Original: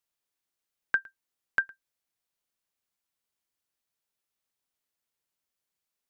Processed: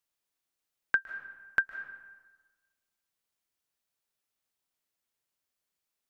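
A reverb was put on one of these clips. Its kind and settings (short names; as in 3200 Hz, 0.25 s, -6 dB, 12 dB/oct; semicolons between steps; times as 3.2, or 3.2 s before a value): digital reverb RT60 1.3 s, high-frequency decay 0.65×, pre-delay 0.11 s, DRR 11.5 dB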